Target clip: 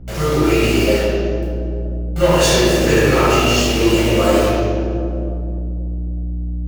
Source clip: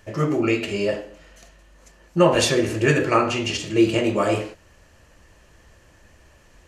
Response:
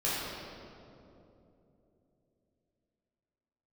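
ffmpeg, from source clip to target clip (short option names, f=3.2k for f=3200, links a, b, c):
-filter_complex "[0:a]highshelf=f=3k:g=8,bandreject=f=50:t=h:w=6,bandreject=f=100:t=h:w=6,bandreject=f=150:t=h:w=6,bandreject=f=200:t=h:w=6,bandreject=f=250:t=h:w=6,bandreject=f=300:t=h:w=6,bandreject=f=350:t=h:w=6,acrusher=bits=4:mix=0:aa=0.000001,aeval=exprs='val(0)+0.0251*(sin(2*PI*60*n/s)+sin(2*PI*2*60*n/s)/2+sin(2*PI*3*60*n/s)/3+sin(2*PI*4*60*n/s)/4+sin(2*PI*5*60*n/s)/5)':c=same,acrossover=split=100[a][b];[b]asoftclip=type=tanh:threshold=-15.5dB[c];[a][c]amix=inputs=2:normalize=0[d];[1:a]atrim=start_sample=2205,asetrate=52920,aresample=44100[e];[d][e]afir=irnorm=-1:irlink=0,volume=-1dB"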